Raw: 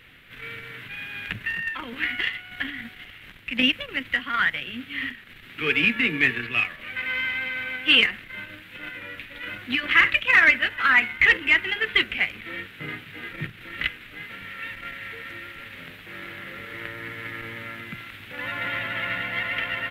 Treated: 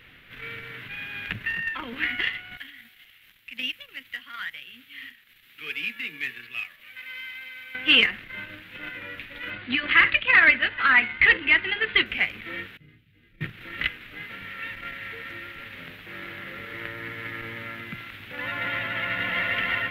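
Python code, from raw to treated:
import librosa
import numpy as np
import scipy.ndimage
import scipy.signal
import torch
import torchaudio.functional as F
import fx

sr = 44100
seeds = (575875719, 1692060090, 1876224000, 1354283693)

y = fx.pre_emphasis(x, sr, coefficient=0.9, at=(2.57, 7.75))
y = fx.brickwall_lowpass(y, sr, high_hz=4900.0, at=(9.5, 12.06))
y = fx.tone_stack(y, sr, knobs='10-0-1', at=(12.77, 13.41))
y = fx.echo_throw(y, sr, start_s=18.86, length_s=0.64, ms=320, feedback_pct=50, wet_db=-2.0)
y = fx.peak_eq(y, sr, hz=8500.0, db=-6.5, octaves=0.81)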